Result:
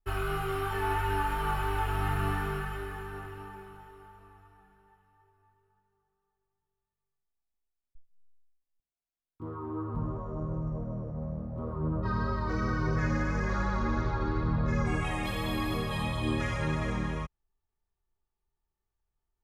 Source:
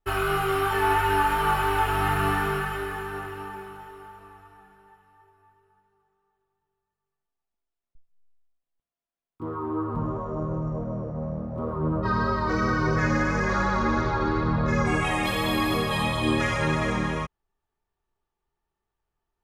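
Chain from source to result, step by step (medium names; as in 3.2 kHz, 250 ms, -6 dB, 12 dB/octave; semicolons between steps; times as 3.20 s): bass shelf 130 Hz +11 dB; trim -9 dB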